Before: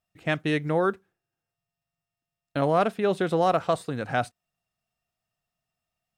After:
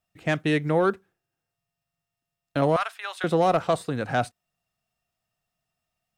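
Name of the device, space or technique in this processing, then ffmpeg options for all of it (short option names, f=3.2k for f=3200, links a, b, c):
one-band saturation: -filter_complex "[0:a]asettb=1/sr,asplit=3[a][b][c];[a]atrim=end=2.764[d];[b]atrim=start=2.76:end=3.24,asetpts=PTS-STARTPTS,afade=t=in:d=0.004:c=qsin,afade=t=out:st=0.476:d=0.004:c=qsin,highpass=f=990:w=0.5412,highpass=f=990:w=1.3066[e];[c]atrim=start=3.236[f];[d][e]acrossfade=d=0.004:c1=hsin:c2=qsin[g];[g][f]acrossfade=d=0.004:c1=qsin:c2=hsin,acrossover=split=560|4300[h][i][j];[i]asoftclip=type=tanh:threshold=-20dB[k];[h][k][j]amix=inputs=3:normalize=0,volume=2.5dB"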